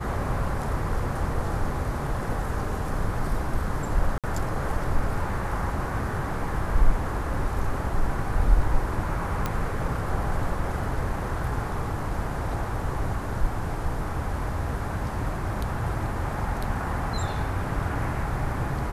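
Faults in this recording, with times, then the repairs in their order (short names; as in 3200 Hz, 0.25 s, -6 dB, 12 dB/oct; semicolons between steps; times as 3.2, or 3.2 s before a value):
4.18–4.24 gap 57 ms
9.46 pop -12 dBFS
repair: de-click; interpolate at 4.18, 57 ms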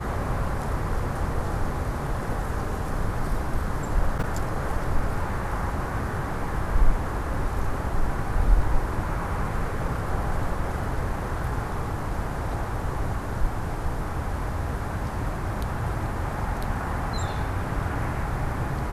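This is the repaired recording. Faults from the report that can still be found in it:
none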